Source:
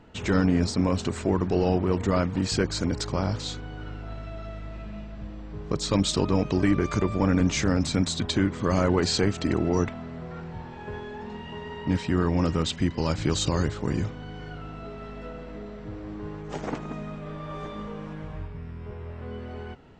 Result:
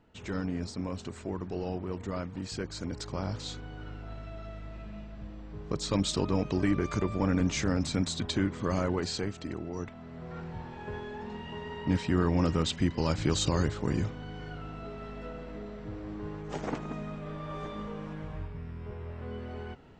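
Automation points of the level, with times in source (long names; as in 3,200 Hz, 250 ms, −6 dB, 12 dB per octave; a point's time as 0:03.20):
0:02.58 −11.5 dB
0:03.60 −5 dB
0:08.60 −5 dB
0:09.73 −14 dB
0:10.37 −2.5 dB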